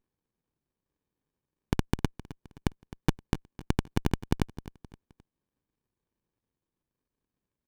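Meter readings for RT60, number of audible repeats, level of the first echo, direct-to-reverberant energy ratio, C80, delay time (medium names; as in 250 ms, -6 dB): no reverb, 3, -16.5 dB, no reverb, no reverb, 261 ms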